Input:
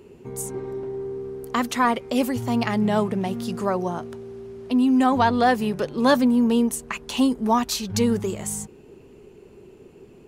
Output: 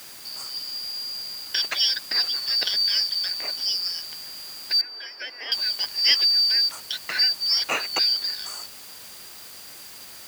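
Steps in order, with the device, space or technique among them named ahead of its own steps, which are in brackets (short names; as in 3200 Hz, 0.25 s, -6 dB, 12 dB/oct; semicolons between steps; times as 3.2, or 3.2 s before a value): split-band scrambled radio (four-band scrambler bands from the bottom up 4321; BPF 400–3200 Hz; white noise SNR 18 dB); HPF 56 Hz; 4.81–5.52 three-band isolator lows -20 dB, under 270 Hz, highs -23 dB, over 2100 Hz; gain +6 dB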